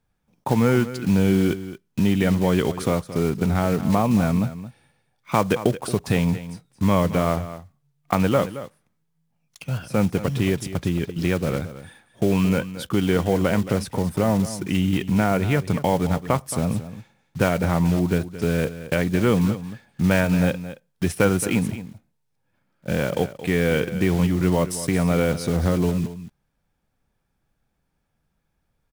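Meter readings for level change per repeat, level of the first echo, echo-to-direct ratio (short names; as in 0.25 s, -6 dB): no steady repeat, -13.5 dB, -13.5 dB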